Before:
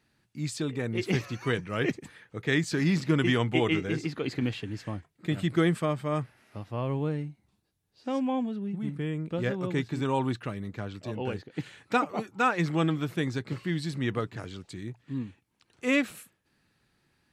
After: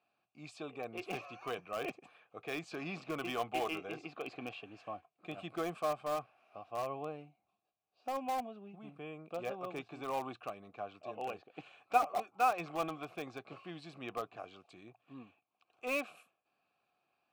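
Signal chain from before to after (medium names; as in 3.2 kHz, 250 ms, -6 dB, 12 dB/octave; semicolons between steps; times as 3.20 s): vowel filter a; treble shelf 8.4 kHz +5.5 dB; in parallel at -12 dB: integer overflow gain 36 dB; on the sum: trim +4 dB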